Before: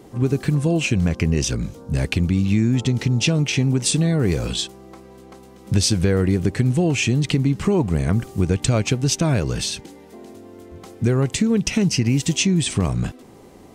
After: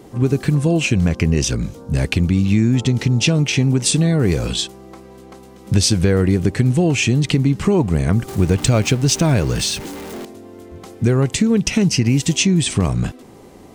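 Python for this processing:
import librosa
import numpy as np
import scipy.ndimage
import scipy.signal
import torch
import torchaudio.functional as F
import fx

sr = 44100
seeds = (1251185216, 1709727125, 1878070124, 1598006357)

y = fx.zero_step(x, sr, step_db=-31.0, at=(8.28, 10.25))
y = y * 10.0 ** (3.0 / 20.0)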